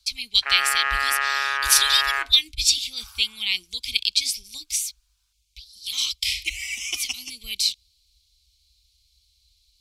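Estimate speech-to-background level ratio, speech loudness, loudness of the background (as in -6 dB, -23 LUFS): 1.5 dB, -22.5 LUFS, -24.0 LUFS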